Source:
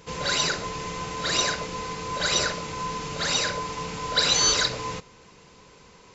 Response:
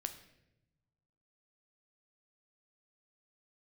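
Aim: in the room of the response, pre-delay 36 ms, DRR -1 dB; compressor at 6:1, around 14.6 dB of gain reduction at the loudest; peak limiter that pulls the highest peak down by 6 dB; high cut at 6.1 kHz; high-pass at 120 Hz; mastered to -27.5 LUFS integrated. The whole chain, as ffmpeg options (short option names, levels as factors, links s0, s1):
-filter_complex "[0:a]highpass=120,lowpass=6100,acompressor=threshold=0.0178:ratio=6,alimiter=level_in=1.78:limit=0.0631:level=0:latency=1,volume=0.562,asplit=2[s0][s1];[1:a]atrim=start_sample=2205,adelay=36[s2];[s1][s2]afir=irnorm=-1:irlink=0,volume=1.33[s3];[s0][s3]amix=inputs=2:normalize=0,volume=2.24"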